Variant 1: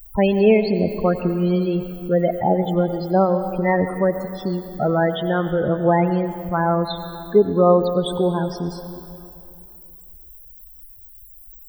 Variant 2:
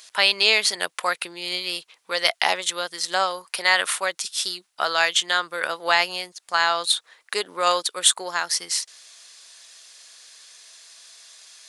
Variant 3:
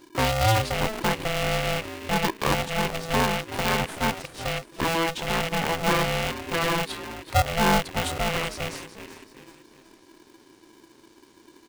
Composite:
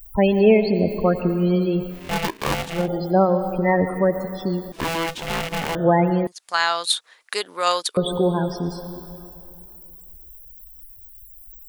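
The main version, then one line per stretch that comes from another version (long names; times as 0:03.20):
1
0:02.00–0:02.79: punch in from 3, crossfade 0.24 s
0:04.72–0:05.75: punch in from 3
0:06.27–0:07.97: punch in from 2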